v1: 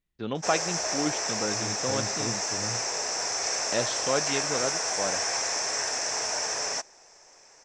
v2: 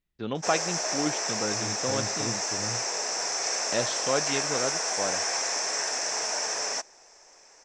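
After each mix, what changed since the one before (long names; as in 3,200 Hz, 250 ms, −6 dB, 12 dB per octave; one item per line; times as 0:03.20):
background: add high-pass filter 180 Hz 12 dB per octave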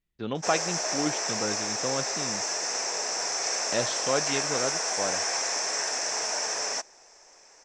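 second voice: muted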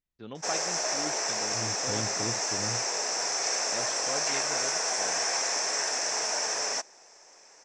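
first voice −10.0 dB
second voice: unmuted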